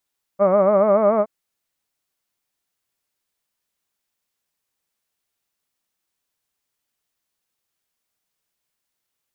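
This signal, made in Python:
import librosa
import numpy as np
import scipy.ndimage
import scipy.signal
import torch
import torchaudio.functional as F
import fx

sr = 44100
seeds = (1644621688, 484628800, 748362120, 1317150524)

y = fx.formant_vowel(sr, seeds[0], length_s=0.87, hz=190.0, glide_st=2.5, vibrato_hz=7.0, vibrato_st=1.1, f1_hz=600.0, f2_hz=1200.0, f3_hz=2200.0)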